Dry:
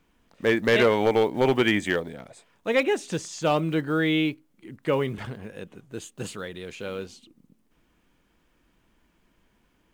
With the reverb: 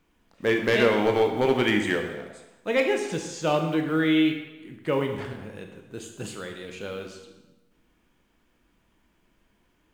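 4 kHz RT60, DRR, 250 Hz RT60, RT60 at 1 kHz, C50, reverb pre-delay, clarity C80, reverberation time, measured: 0.90 s, 3.5 dB, 1.0 s, 1.1 s, 6.5 dB, 18 ms, 8.0 dB, 1.1 s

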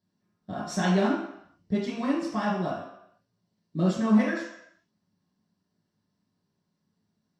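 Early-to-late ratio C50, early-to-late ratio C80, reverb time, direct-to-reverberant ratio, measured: 2.5 dB, 6.0 dB, 0.75 s, -6.5 dB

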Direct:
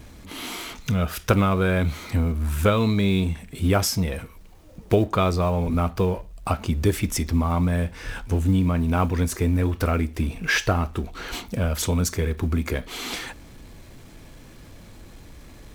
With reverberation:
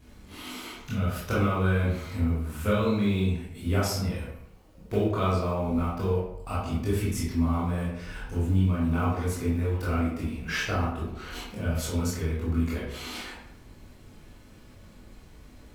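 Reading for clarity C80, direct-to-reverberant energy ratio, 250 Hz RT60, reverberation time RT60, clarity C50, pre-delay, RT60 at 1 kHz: 5.0 dB, -8.5 dB, 0.75 s, 0.75 s, 1.5 dB, 18 ms, 0.75 s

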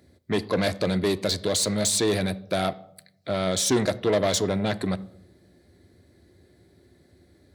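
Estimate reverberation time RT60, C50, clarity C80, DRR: 0.75 s, 19.5 dB, 22.5 dB, 10.5 dB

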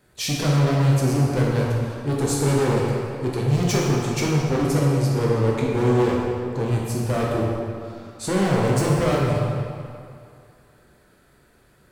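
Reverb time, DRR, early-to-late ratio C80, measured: 2.4 s, -4.5 dB, 0.5 dB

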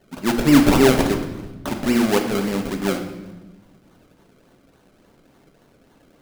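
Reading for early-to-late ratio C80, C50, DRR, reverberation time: 9.5 dB, 7.5 dB, 4.0 dB, 1.1 s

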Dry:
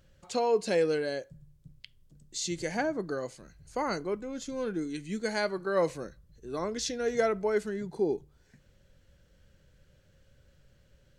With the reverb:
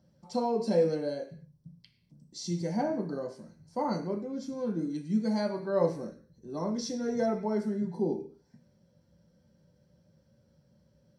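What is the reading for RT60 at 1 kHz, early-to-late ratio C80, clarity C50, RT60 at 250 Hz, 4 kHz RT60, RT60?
0.45 s, 14.5 dB, 10.0 dB, 0.55 s, n/a, 0.45 s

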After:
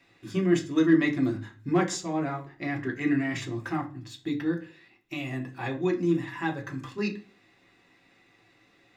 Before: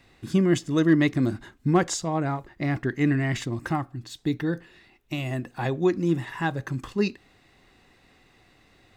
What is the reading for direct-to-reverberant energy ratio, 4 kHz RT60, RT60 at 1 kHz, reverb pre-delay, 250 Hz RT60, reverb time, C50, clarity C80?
0.5 dB, 0.40 s, 0.35 s, 3 ms, 0.50 s, 0.40 s, 14.5 dB, 19.5 dB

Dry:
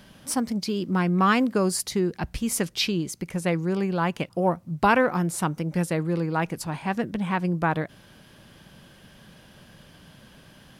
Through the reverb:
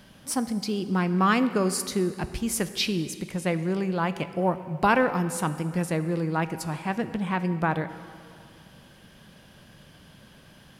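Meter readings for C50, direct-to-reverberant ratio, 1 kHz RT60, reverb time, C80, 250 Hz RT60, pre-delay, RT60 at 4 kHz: 12.5 dB, 11.5 dB, 2.4 s, 2.4 s, 13.5 dB, 2.3 s, 16 ms, 1.9 s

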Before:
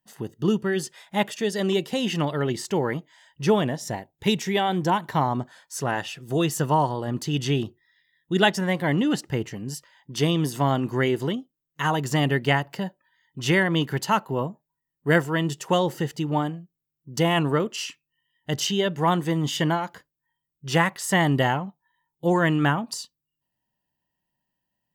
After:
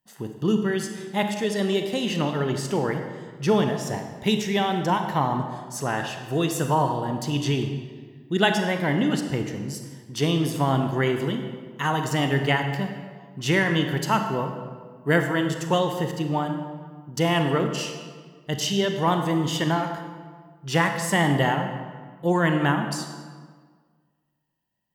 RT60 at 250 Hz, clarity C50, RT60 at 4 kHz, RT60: 1.8 s, 6.5 dB, 1.1 s, 1.6 s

